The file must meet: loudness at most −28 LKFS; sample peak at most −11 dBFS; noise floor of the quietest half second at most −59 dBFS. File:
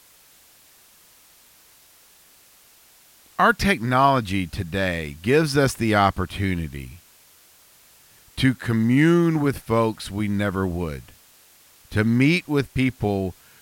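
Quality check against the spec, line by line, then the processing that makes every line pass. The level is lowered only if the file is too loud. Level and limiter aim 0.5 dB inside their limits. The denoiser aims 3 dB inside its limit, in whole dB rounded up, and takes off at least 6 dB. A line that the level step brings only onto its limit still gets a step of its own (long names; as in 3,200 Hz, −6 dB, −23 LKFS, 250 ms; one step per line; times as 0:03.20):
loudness −21.5 LKFS: out of spec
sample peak −4.5 dBFS: out of spec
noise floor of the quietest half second −54 dBFS: out of spec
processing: level −7 dB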